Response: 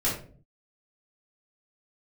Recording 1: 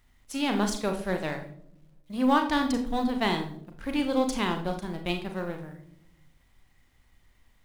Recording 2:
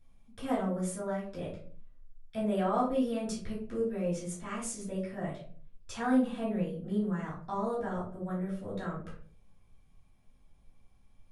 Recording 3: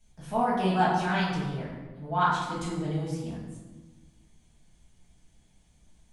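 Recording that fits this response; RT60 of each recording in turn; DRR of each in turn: 2; not exponential, 0.45 s, 1.3 s; 5.0, -8.5, -9.5 dB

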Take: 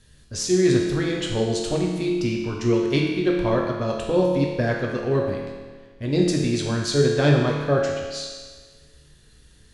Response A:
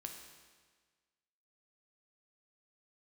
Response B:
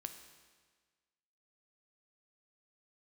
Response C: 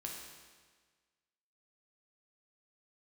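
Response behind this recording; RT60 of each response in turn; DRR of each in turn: C; 1.5, 1.5, 1.5 s; 2.5, 6.5, -1.5 dB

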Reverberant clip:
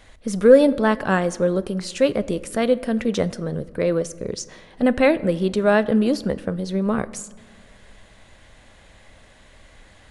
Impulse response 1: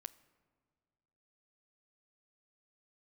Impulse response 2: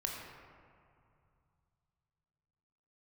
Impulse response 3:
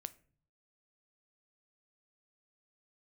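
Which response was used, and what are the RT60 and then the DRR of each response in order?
1; 1.9, 2.5, 0.50 s; 15.5, -1.0, 13.5 dB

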